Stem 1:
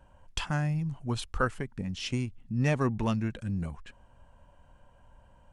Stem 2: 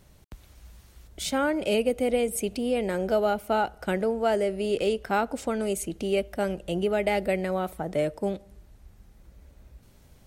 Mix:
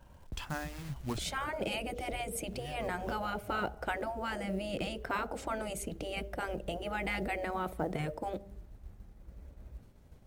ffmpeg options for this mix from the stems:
ffmpeg -i stem1.wav -i stem2.wav -filter_complex "[0:a]acrusher=bits=4:mode=log:mix=0:aa=0.000001,volume=-1dB[link_01];[1:a]agate=range=-33dB:threshold=-49dB:ratio=3:detection=peak,highshelf=frequency=2000:gain=-10.5,volume=2dB,asplit=2[link_02][link_03];[link_03]apad=whole_len=243588[link_04];[link_01][link_04]sidechaincompress=threshold=-46dB:ratio=4:attack=16:release=448[link_05];[link_05][link_02]amix=inputs=2:normalize=0,afftfilt=real='re*lt(hypot(re,im),0.224)':imag='im*lt(hypot(re,im),0.224)':win_size=1024:overlap=0.75,acrusher=bits=9:mode=log:mix=0:aa=0.000001" out.wav

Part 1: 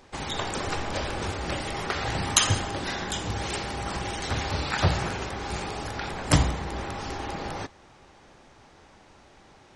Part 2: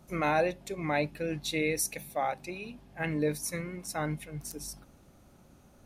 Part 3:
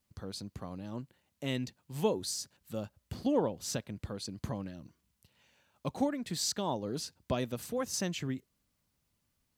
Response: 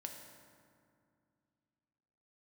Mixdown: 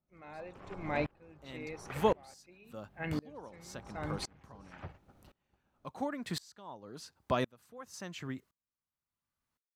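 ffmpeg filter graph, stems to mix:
-filter_complex "[0:a]afwtdn=0.0251,volume=-10dB,asplit=3[link_01][link_02][link_03];[link_01]atrim=end=2.34,asetpts=PTS-STARTPTS,afade=type=out:start_time=2.336:duration=0.004:curve=hsin[link_04];[link_02]atrim=start=2.34:end=3.28,asetpts=PTS-STARTPTS,volume=0[link_05];[link_03]atrim=start=3.28,asetpts=PTS-STARTPTS,afade=type=in:duration=0.004:curve=hsin[link_06];[link_04][link_05][link_06]concat=n=3:v=0:a=1[link_07];[1:a]lowpass=3500,volume=-2dB,asplit=2[link_08][link_09];[2:a]equalizer=frequency=1200:width_type=o:width=1.5:gain=10.5,dynaudnorm=framelen=170:gausssize=13:maxgain=10dB,volume=-9dB[link_10];[link_09]apad=whole_len=430321[link_11];[link_07][link_11]sidechaingate=range=-33dB:threshold=-56dB:ratio=16:detection=peak[link_12];[link_12][link_08][link_10]amix=inputs=3:normalize=0,aeval=exprs='val(0)*pow(10,-28*if(lt(mod(-0.94*n/s,1),2*abs(-0.94)/1000),1-mod(-0.94*n/s,1)/(2*abs(-0.94)/1000),(mod(-0.94*n/s,1)-2*abs(-0.94)/1000)/(1-2*abs(-0.94)/1000))/20)':channel_layout=same"

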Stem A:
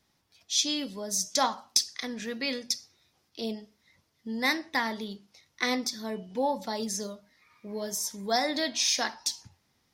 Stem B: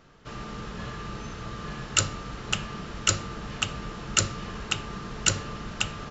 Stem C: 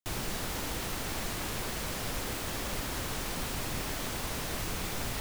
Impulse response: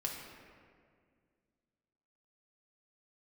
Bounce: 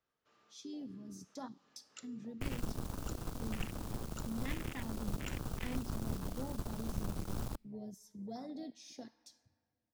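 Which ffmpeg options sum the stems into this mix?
-filter_complex "[0:a]lowshelf=frequency=230:gain=12,volume=-14dB,asplit=3[link_01][link_02][link_03];[link_02]volume=-11.5dB[link_04];[1:a]highpass=350,volume=-15dB,asplit=2[link_05][link_06];[link_06]volume=-10.5dB[link_07];[2:a]acrusher=bits=4:mix=0:aa=0.5,adelay=2350,volume=1.5dB,asplit=2[link_08][link_09];[link_09]volume=-23.5dB[link_10];[link_03]apad=whole_len=269183[link_11];[link_05][link_11]sidechaincompress=threshold=-49dB:ratio=8:attack=16:release=126[link_12];[3:a]atrim=start_sample=2205[link_13];[link_04][link_07][link_10]amix=inputs=3:normalize=0[link_14];[link_14][link_13]afir=irnorm=-1:irlink=0[link_15];[link_01][link_12][link_08][link_15]amix=inputs=4:normalize=0,afwtdn=0.0158,acrossover=split=300|3000[link_16][link_17][link_18];[link_17]acompressor=threshold=-56dB:ratio=2[link_19];[link_16][link_19][link_18]amix=inputs=3:normalize=0"

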